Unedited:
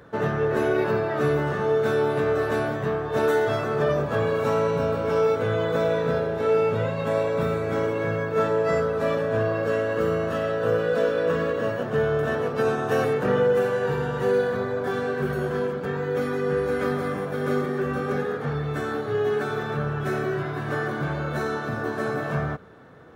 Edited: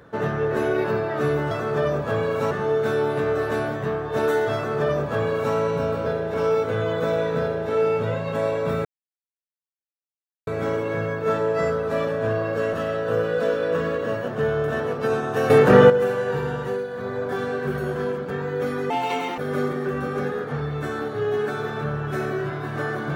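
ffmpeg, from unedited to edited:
ffmpeg -i in.wav -filter_complex "[0:a]asplit=13[link_01][link_02][link_03][link_04][link_05][link_06][link_07][link_08][link_09][link_10][link_11][link_12][link_13];[link_01]atrim=end=1.512[link_14];[link_02]atrim=start=3.548:end=4.552[link_15];[link_03]atrim=start=1.508:end=5.062[link_16];[link_04]atrim=start=6.128:end=6.412[link_17];[link_05]atrim=start=5.058:end=7.57,asetpts=PTS-STARTPTS,afade=type=out:start_time=2.508:duration=0.004:curve=hsin,apad=pad_dur=1.62[link_18];[link_06]atrim=start=7.57:end=9.832,asetpts=PTS-STARTPTS,afade=type=in:duration=0.004:curve=hsin[link_19];[link_07]atrim=start=10.278:end=13.052[link_20];[link_08]atrim=start=13.048:end=13.452,asetpts=PTS-STARTPTS,volume=10dB[link_21];[link_09]atrim=start=13.448:end=14.4,asetpts=PTS-STARTPTS,afade=type=out:start_time=0.662:duration=0.29:silence=0.354813[link_22];[link_10]atrim=start=14.4:end=14.44,asetpts=PTS-STARTPTS,volume=-9dB[link_23];[link_11]atrim=start=14.44:end=16.454,asetpts=PTS-STARTPTS,afade=type=in:duration=0.29:silence=0.354813[link_24];[link_12]atrim=start=16.45:end=17.31,asetpts=PTS-STARTPTS,asetrate=78939,aresample=44100[link_25];[link_13]atrim=start=17.306[link_26];[link_14][link_15]acrossfade=duration=0.004:curve1=hsin:curve2=hsin[link_27];[link_27][link_16]acrossfade=duration=0.004:curve1=hsin:curve2=hsin[link_28];[link_28][link_17]acrossfade=duration=0.004:curve1=hsin:curve2=hsin[link_29];[link_18][link_19]concat=n=2:v=0:a=1[link_30];[link_29][link_30]acrossfade=duration=0.004:curve1=hsin:curve2=hsin[link_31];[link_31][link_20]acrossfade=duration=0.004:curve1=hsin:curve2=hsin[link_32];[link_32][link_21]acrossfade=duration=0.004:curve1=hsin:curve2=hsin[link_33];[link_22][link_23][link_24]concat=n=3:v=0:a=1[link_34];[link_33][link_34]acrossfade=duration=0.004:curve1=hsin:curve2=hsin[link_35];[link_35][link_25]acrossfade=duration=0.004:curve1=hsin:curve2=hsin[link_36];[link_36][link_26]acrossfade=duration=0.004:curve1=hsin:curve2=hsin" out.wav

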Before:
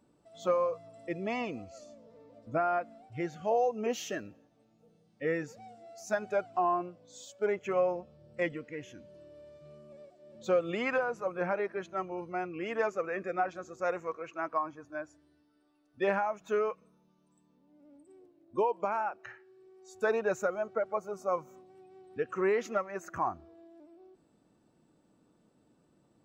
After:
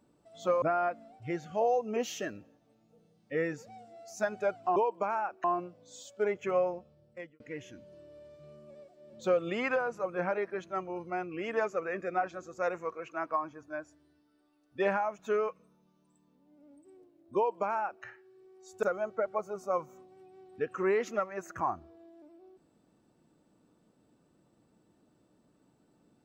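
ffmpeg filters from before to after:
ffmpeg -i in.wav -filter_complex "[0:a]asplit=6[link_01][link_02][link_03][link_04][link_05][link_06];[link_01]atrim=end=0.622[link_07];[link_02]atrim=start=2.518:end=6.662[link_08];[link_03]atrim=start=18.578:end=19.262[link_09];[link_04]atrim=start=6.658:end=8.62,asetpts=PTS-STARTPTS,afade=type=out:start_time=1.132:duration=0.83[link_10];[link_05]atrim=start=8.62:end=20.052,asetpts=PTS-STARTPTS,afade=type=in:duration=0.004:curve=hsin[link_11];[link_06]atrim=start=20.408[link_12];[link_07][link_08]acrossfade=duration=0.004:curve1=hsin:curve2=hsin[link_13];[link_13][link_09]acrossfade=duration=0.004:curve1=hsin:curve2=hsin[link_14];[link_10][link_11]concat=n=2:v=0:a=1[link_15];[link_14][link_15]acrossfade=duration=0.004:curve1=hsin:curve2=hsin[link_16];[link_16][link_12]acrossfade=duration=0.004:curve1=hsin:curve2=hsin" out.wav

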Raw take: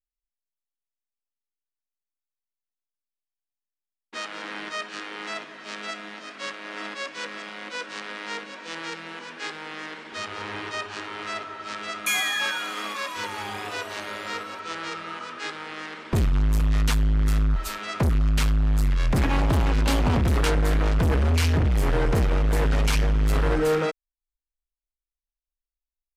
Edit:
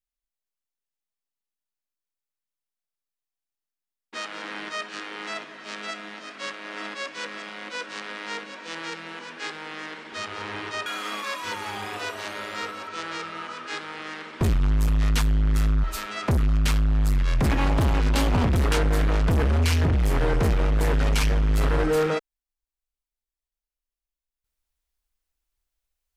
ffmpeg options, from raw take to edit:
ffmpeg -i in.wav -filter_complex "[0:a]asplit=2[link_01][link_02];[link_01]atrim=end=10.862[link_03];[link_02]atrim=start=12.578[link_04];[link_03][link_04]acrossfade=duration=0.004:curve1=hsin:curve2=hsin" out.wav

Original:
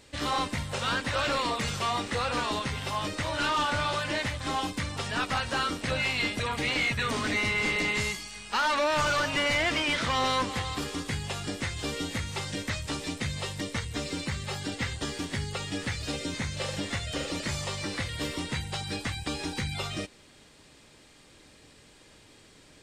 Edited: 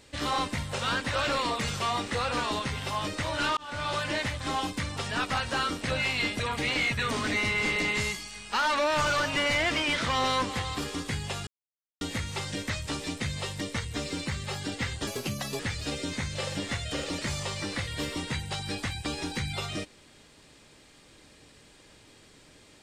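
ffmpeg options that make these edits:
ffmpeg -i in.wav -filter_complex "[0:a]asplit=6[link_01][link_02][link_03][link_04][link_05][link_06];[link_01]atrim=end=3.57,asetpts=PTS-STARTPTS,afade=type=out:start_time=3.566:duration=0.004:curve=hsin[link_07];[link_02]atrim=start=3.57:end=11.47,asetpts=PTS-STARTPTS,afade=type=in:duration=0.39,afade=type=out:start_time=7.896:duration=0.004:curve=hsin[link_08];[link_03]atrim=start=11.47:end=12.01,asetpts=PTS-STARTPTS,volume=0[link_09];[link_04]atrim=start=12.01:end=15.074,asetpts=PTS-STARTPTS,afade=type=in:duration=0.004:curve=hsin[link_10];[link_05]atrim=start=15.07:end=15.81,asetpts=PTS-STARTPTS,asetrate=62181,aresample=44100[link_11];[link_06]atrim=start=15.806[link_12];[link_07][link_08][link_09][link_10]concat=n=4:v=0:a=1[link_13];[link_13][link_11]acrossfade=duration=0.004:curve1=hsin:curve2=hsin[link_14];[link_14][link_12]acrossfade=duration=0.004:curve1=hsin:curve2=hsin" out.wav

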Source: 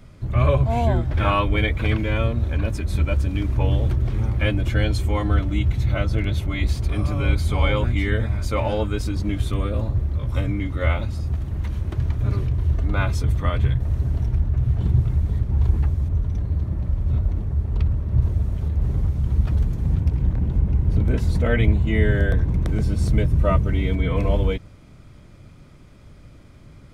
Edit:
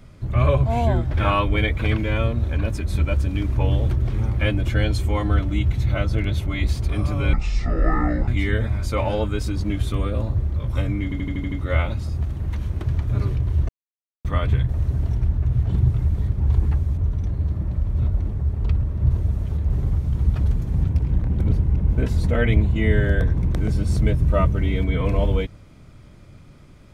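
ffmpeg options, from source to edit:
ffmpeg -i in.wav -filter_complex "[0:a]asplit=13[link_01][link_02][link_03][link_04][link_05][link_06][link_07][link_08][link_09][link_10][link_11][link_12][link_13];[link_01]atrim=end=7.334[link_14];[link_02]atrim=start=7.33:end=7.87,asetpts=PTS-STARTPTS,asetrate=25137,aresample=44100[link_15];[link_03]atrim=start=7.866:end=10.712[link_16];[link_04]atrim=start=10.628:end=10.712[link_17];[link_05]atrim=start=10.628:end=10.712[link_18];[link_06]atrim=start=10.628:end=10.712[link_19];[link_07]atrim=start=10.628:end=10.712[link_20];[link_08]atrim=start=10.628:end=10.712[link_21];[link_09]atrim=start=10.628:end=12.8,asetpts=PTS-STARTPTS,afade=type=out:start_time=2.168:duration=0.004:curve=hsin[link_22];[link_10]atrim=start=12.8:end=13.36,asetpts=PTS-STARTPTS,volume=0[link_23];[link_11]atrim=start=13.36:end=20.512,asetpts=PTS-STARTPTS,afade=type=in:duration=0.004:curve=hsin[link_24];[link_12]atrim=start=20.508:end=21.092,asetpts=PTS-STARTPTS,areverse[link_25];[link_13]atrim=start=21.088[link_26];[link_14][link_15]acrossfade=duration=0.004:curve1=hsin:curve2=hsin[link_27];[link_27][link_16]acrossfade=duration=0.004:curve1=hsin:curve2=hsin[link_28];[link_28][link_17]acrossfade=duration=0.004:curve1=hsin:curve2=hsin[link_29];[link_29][link_18]acrossfade=duration=0.004:curve1=hsin:curve2=hsin[link_30];[link_30][link_19]acrossfade=duration=0.004:curve1=hsin:curve2=hsin[link_31];[link_31][link_20]acrossfade=duration=0.004:curve1=hsin:curve2=hsin[link_32];[link_32][link_21]acrossfade=duration=0.004:curve1=hsin:curve2=hsin[link_33];[link_22][link_23][link_24]concat=n=3:v=0:a=1[link_34];[link_33][link_34]acrossfade=duration=0.004:curve1=hsin:curve2=hsin[link_35];[link_35][link_25]acrossfade=duration=0.004:curve1=hsin:curve2=hsin[link_36];[link_36][link_26]acrossfade=duration=0.004:curve1=hsin:curve2=hsin" out.wav

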